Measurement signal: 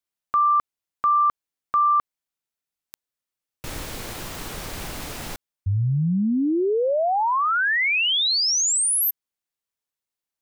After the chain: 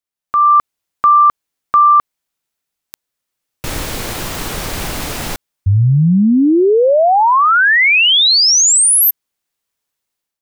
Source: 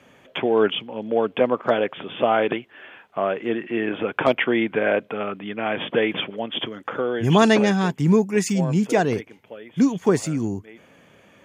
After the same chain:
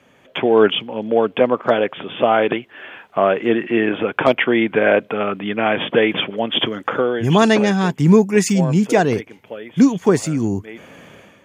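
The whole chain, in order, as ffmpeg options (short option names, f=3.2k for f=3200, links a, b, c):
-af "dynaudnorm=f=140:g=5:m=12dB,volume=-1dB"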